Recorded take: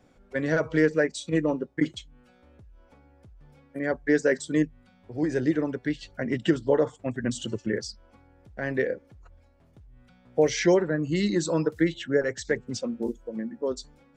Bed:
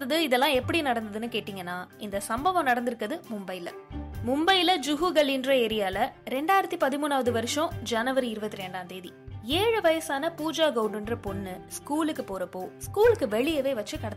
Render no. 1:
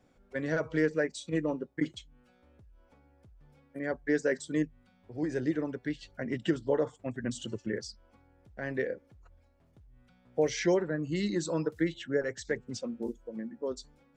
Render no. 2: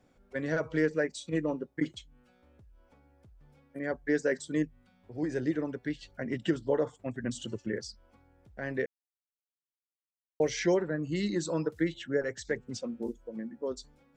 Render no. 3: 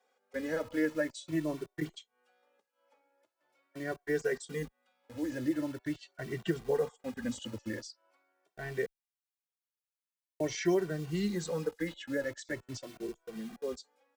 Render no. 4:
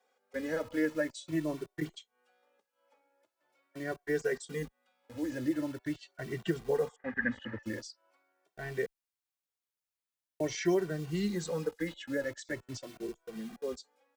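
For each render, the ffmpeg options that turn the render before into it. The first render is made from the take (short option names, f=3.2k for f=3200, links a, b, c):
-af "volume=-6dB"
-filter_complex "[0:a]asplit=3[a][b][c];[a]atrim=end=8.86,asetpts=PTS-STARTPTS,afade=t=out:st=8.856:d=0.004:c=hsin[d];[b]atrim=start=8.86:end=10.4,asetpts=PTS-STARTPTS,volume=0[e];[c]atrim=start=10.4,asetpts=PTS-STARTPTS,afade=t=in:d=0.004:c=hsin[f];[d][e][f]concat=n=3:v=0:a=1"
-filter_complex "[0:a]acrossover=split=430|1700[a][b][c];[a]acrusher=bits=7:mix=0:aa=0.000001[d];[d][b][c]amix=inputs=3:normalize=0,asplit=2[e][f];[f]adelay=2.1,afreqshift=0.44[g];[e][g]amix=inputs=2:normalize=1"
-filter_complex "[0:a]asettb=1/sr,asplit=3[a][b][c];[a]atrim=end=6.964[d];[b]atrim=start=6.96:end=7.63,asetpts=PTS-STARTPTS,afade=t=in:d=0.004:c=qsin,afade=t=out:st=0.666:d=0.004:c=qsin,lowpass=f=1.8k:t=q:w=14[e];[c]atrim=start=7.626[f];[d][e]acrossfade=d=0.004:c1=hsin:c2=qsin[g];[g][f]acrossfade=d=0.004:c1=qsin:c2=hsin"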